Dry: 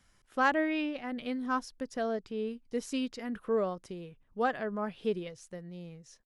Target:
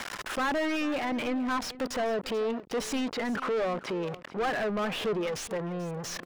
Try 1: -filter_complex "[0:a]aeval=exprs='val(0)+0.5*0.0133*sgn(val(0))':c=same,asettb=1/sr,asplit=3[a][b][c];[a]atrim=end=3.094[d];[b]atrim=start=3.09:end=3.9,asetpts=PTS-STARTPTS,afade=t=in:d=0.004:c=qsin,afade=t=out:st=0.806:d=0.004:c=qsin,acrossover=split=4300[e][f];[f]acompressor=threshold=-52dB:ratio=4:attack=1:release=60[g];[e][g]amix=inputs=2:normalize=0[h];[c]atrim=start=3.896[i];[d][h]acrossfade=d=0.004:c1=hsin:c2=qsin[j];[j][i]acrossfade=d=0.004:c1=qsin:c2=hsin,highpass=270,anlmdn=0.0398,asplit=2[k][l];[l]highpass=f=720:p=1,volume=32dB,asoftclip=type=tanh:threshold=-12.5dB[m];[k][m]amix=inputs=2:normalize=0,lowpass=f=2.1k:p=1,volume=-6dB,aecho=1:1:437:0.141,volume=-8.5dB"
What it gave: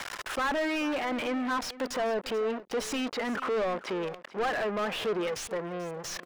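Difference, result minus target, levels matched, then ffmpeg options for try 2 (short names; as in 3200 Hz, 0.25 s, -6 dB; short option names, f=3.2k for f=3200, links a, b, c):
125 Hz band -5.5 dB
-filter_complex "[0:a]aeval=exprs='val(0)+0.5*0.0133*sgn(val(0))':c=same,asettb=1/sr,asplit=3[a][b][c];[a]atrim=end=3.094[d];[b]atrim=start=3.09:end=3.9,asetpts=PTS-STARTPTS,afade=t=in:d=0.004:c=qsin,afade=t=out:st=0.806:d=0.004:c=qsin,acrossover=split=4300[e][f];[f]acompressor=threshold=-52dB:ratio=4:attack=1:release=60[g];[e][g]amix=inputs=2:normalize=0[h];[c]atrim=start=3.896[i];[d][h]acrossfade=d=0.004:c1=hsin:c2=qsin[j];[j][i]acrossfade=d=0.004:c1=qsin:c2=hsin,highpass=110,anlmdn=0.0398,asplit=2[k][l];[l]highpass=f=720:p=1,volume=32dB,asoftclip=type=tanh:threshold=-12.5dB[m];[k][m]amix=inputs=2:normalize=0,lowpass=f=2.1k:p=1,volume=-6dB,aecho=1:1:437:0.141,volume=-8.5dB"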